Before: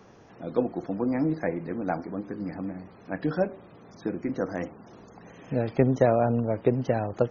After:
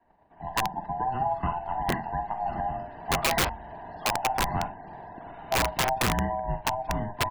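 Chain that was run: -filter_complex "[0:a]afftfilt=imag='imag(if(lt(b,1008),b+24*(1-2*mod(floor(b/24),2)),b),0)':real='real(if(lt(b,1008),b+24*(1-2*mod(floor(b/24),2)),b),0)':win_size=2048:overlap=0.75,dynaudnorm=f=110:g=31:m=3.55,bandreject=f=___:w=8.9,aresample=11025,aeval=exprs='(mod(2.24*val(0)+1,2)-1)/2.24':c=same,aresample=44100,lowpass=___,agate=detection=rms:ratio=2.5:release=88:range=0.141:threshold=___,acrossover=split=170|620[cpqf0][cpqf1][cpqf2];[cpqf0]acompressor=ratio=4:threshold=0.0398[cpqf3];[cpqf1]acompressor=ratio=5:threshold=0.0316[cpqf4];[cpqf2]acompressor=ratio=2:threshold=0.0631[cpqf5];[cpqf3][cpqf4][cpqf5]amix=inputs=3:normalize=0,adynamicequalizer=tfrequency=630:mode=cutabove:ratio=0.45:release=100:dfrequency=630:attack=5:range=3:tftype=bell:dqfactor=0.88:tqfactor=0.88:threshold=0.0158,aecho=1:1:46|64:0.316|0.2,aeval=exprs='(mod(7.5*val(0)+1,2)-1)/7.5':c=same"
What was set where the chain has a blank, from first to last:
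1300, 1800, 0.00447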